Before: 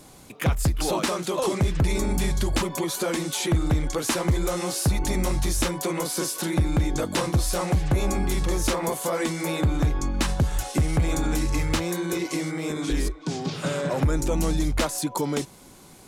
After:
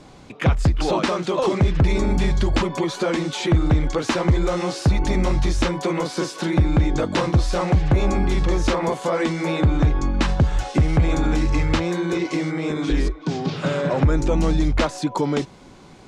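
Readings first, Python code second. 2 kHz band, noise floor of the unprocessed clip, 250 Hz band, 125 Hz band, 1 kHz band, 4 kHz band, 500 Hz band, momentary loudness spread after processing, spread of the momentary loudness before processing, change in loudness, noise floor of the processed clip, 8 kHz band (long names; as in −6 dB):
+3.5 dB, −49 dBFS, +5.0 dB, +5.0 dB, +4.5 dB, +1.0 dB, +4.5 dB, 5 LU, 4 LU, +4.0 dB, −45 dBFS, −6.5 dB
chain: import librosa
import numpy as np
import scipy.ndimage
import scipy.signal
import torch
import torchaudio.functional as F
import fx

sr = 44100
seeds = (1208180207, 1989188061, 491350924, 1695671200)

y = fx.air_absorb(x, sr, metres=130.0)
y = y * 10.0 ** (5.0 / 20.0)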